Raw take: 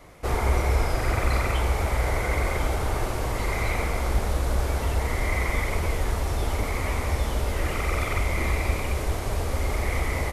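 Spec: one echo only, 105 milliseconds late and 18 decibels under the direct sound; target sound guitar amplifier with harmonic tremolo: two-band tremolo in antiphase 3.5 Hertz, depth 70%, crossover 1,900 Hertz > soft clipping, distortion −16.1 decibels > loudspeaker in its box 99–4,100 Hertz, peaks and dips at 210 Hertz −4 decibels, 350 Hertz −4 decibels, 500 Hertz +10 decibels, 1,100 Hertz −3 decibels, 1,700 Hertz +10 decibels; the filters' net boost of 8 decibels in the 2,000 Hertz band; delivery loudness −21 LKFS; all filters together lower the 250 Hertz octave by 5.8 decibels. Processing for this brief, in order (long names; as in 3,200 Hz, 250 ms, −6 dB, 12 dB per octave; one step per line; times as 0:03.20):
parametric band 250 Hz −5.5 dB
parametric band 2,000 Hz +4.5 dB
single-tap delay 105 ms −18 dB
two-band tremolo in antiphase 3.5 Hz, depth 70%, crossover 1,900 Hz
soft clipping −20.5 dBFS
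loudspeaker in its box 99–4,100 Hz, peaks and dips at 210 Hz −4 dB, 350 Hz −4 dB, 500 Hz +10 dB, 1,100 Hz −3 dB, 1,700 Hz +10 dB
level +9 dB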